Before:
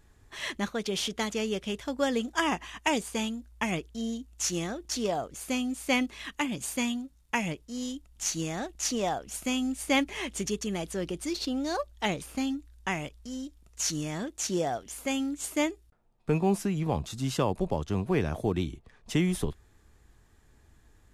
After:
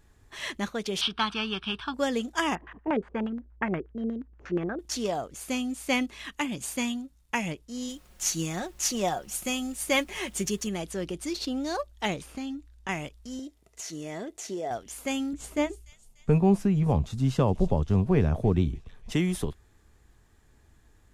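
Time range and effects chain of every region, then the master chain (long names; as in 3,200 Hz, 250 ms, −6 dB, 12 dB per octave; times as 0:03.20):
0:01.01–0:01.94: low-pass filter 8,500 Hz 24 dB per octave + parametric band 1,600 Hz +14 dB 2.1 octaves + phaser with its sweep stopped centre 2,000 Hz, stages 6
0:02.55–0:04.79: low-pass filter 2,500 Hz 6 dB per octave + auto-filter low-pass square 8.4 Hz 410–1,600 Hz
0:07.88–0:10.68: high-shelf EQ 12,000 Hz +12 dB + background noise pink −61 dBFS + comb filter 5.5 ms, depth 45%
0:12.21–0:12.89: high-shelf EQ 9,000 Hz −8.5 dB + downward compressor 2.5 to 1, threshold −33 dBFS
0:13.39–0:14.71: high-pass filter 130 Hz 6 dB per octave + downward compressor 4 to 1, threshold −37 dBFS + hollow resonant body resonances 420/650/2,000 Hz, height 10 dB, ringing for 25 ms
0:15.33–0:19.12: spectral tilt −2.5 dB per octave + notch filter 320 Hz, Q 6.4 + delay with a high-pass on its return 294 ms, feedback 58%, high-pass 3,700 Hz, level −13 dB
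whole clip: no processing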